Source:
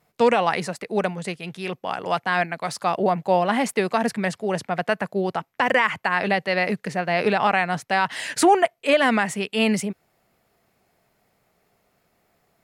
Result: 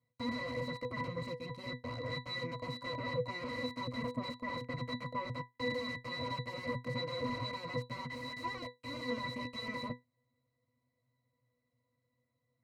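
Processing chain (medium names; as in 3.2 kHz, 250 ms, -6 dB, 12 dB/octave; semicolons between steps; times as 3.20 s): high-pass 55 Hz 12 dB/octave; pre-emphasis filter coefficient 0.8; time-frequency box 4.01–4.22 s, 1.1–5.8 kHz -15 dB; bass shelf 100 Hz +8 dB; waveshaping leveller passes 3; in parallel at -2.5 dB: peak limiter -23.5 dBFS, peak gain reduction 11 dB; on the sum: wavefolder -27.5 dBFS; pitch-class resonator B, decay 0.18 s; trim +11.5 dB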